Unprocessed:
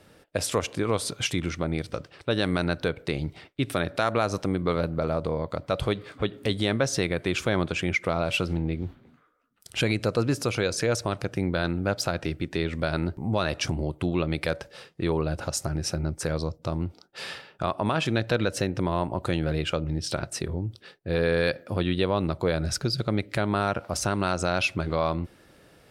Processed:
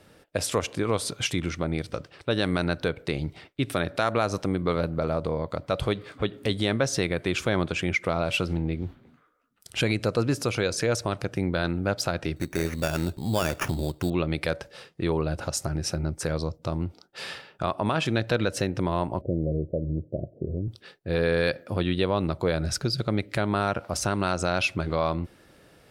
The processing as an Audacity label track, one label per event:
12.360000	14.100000	sample-rate reducer 4.1 kHz
19.210000	20.680000	steep low-pass 650 Hz 72 dB/octave

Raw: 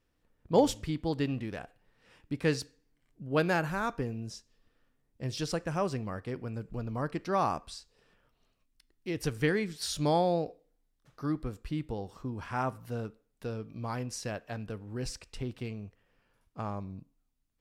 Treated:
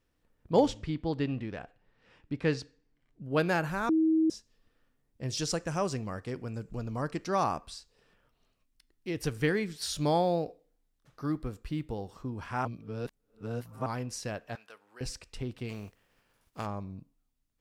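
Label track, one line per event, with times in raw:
0.660000	3.240000	distance through air 95 m
3.890000	4.300000	bleep 319 Hz -21.5 dBFS
5.300000	7.440000	peaking EQ 6.8 kHz +9 dB 0.88 oct
9.170000	12.080000	short-mantissa float mantissa of 6-bit
12.650000	13.860000	reverse
14.550000	15.010000	high-pass 1 kHz
15.680000	16.650000	spectral contrast reduction exponent 0.69

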